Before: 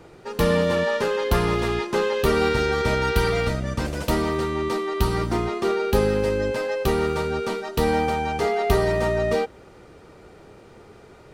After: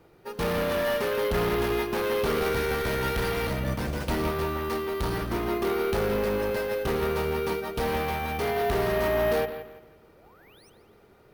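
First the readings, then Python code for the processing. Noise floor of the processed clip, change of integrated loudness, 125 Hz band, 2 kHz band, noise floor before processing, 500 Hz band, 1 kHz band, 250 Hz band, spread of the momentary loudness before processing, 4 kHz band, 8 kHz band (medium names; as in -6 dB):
-57 dBFS, -4.5 dB, -6.0 dB, -3.5 dB, -48 dBFS, -4.0 dB, -4.5 dB, -5.0 dB, 5 LU, -4.0 dB, -4.5 dB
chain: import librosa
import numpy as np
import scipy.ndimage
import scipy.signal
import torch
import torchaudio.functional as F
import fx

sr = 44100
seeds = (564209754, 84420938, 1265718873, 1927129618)

y = np.clip(x, -10.0 ** (-24.0 / 20.0), 10.0 ** (-24.0 / 20.0))
y = fx.spec_paint(y, sr, seeds[0], shape='rise', start_s=10.16, length_s=0.54, low_hz=490.0, high_hz=6400.0, level_db=-49.0)
y = fx.echo_bbd(y, sr, ms=169, stages=4096, feedback_pct=44, wet_db=-7.5)
y = np.repeat(scipy.signal.resample_poly(y, 1, 3), 3)[:len(y)]
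y = fx.upward_expand(y, sr, threshold_db=-43.0, expansion=1.5)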